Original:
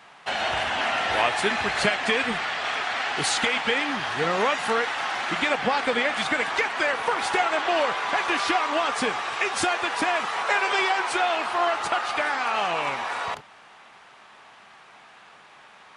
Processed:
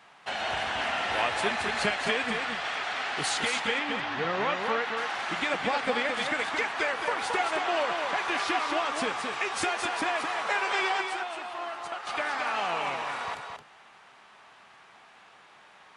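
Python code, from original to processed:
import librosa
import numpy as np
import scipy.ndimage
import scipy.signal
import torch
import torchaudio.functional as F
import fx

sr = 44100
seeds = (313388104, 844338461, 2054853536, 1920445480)

y = fx.lowpass(x, sr, hz=4400.0, slope=12, at=(3.79, 4.97))
y = fx.comb_fb(y, sr, f0_hz=270.0, decay_s=0.77, harmonics='all', damping=0.0, mix_pct=60, at=(11.01, 12.07))
y = y + 10.0 ** (-5.5 / 20.0) * np.pad(y, (int(220 * sr / 1000.0), 0))[:len(y)]
y = y * librosa.db_to_amplitude(-5.5)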